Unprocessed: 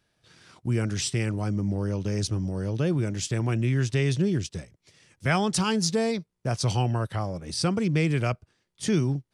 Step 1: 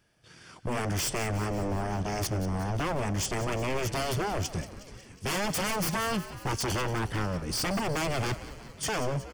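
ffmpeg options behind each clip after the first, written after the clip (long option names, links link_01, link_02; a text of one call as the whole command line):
ffmpeg -i in.wav -filter_complex "[0:a]aeval=exprs='0.0422*(abs(mod(val(0)/0.0422+3,4)-2)-1)':channel_layout=same,bandreject=frequency=3900:width=5.5,asplit=8[link_01][link_02][link_03][link_04][link_05][link_06][link_07][link_08];[link_02]adelay=182,afreqshift=-69,volume=-14dB[link_09];[link_03]adelay=364,afreqshift=-138,volume=-17.9dB[link_10];[link_04]adelay=546,afreqshift=-207,volume=-21.8dB[link_11];[link_05]adelay=728,afreqshift=-276,volume=-25.6dB[link_12];[link_06]adelay=910,afreqshift=-345,volume=-29.5dB[link_13];[link_07]adelay=1092,afreqshift=-414,volume=-33.4dB[link_14];[link_08]adelay=1274,afreqshift=-483,volume=-37.3dB[link_15];[link_01][link_09][link_10][link_11][link_12][link_13][link_14][link_15]amix=inputs=8:normalize=0,volume=3dB" out.wav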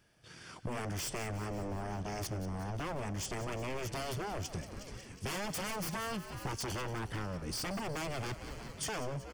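ffmpeg -i in.wav -af "acompressor=threshold=-36dB:ratio=6" out.wav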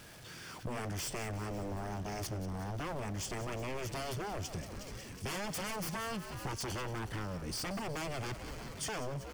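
ffmpeg -i in.wav -af "aeval=exprs='val(0)+0.5*0.00501*sgn(val(0))':channel_layout=same,volume=-2dB" out.wav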